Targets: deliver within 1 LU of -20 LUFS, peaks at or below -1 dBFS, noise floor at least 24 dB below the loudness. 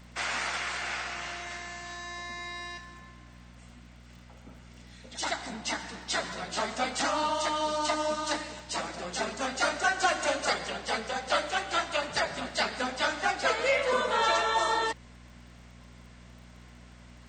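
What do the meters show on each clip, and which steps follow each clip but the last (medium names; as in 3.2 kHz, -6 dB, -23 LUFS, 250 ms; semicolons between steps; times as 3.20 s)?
tick rate 27 per s; hum 60 Hz; highest harmonic 240 Hz; hum level -49 dBFS; loudness -30.0 LUFS; peak level -14.0 dBFS; loudness target -20.0 LUFS
-> de-click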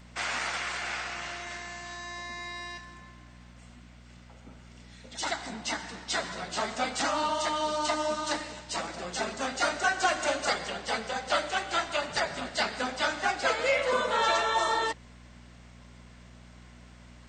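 tick rate 0.12 per s; hum 60 Hz; highest harmonic 240 Hz; hum level -50 dBFS
-> de-hum 60 Hz, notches 4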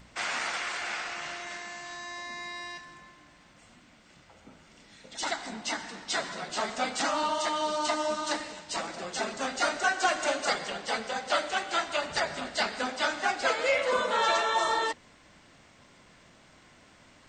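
hum not found; loudness -30.0 LUFS; peak level -14.0 dBFS; loudness target -20.0 LUFS
-> trim +10 dB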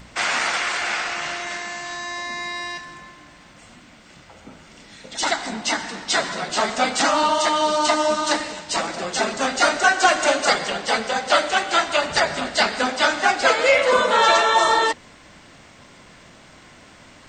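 loudness -20.0 LUFS; peak level -4.0 dBFS; noise floor -48 dBFS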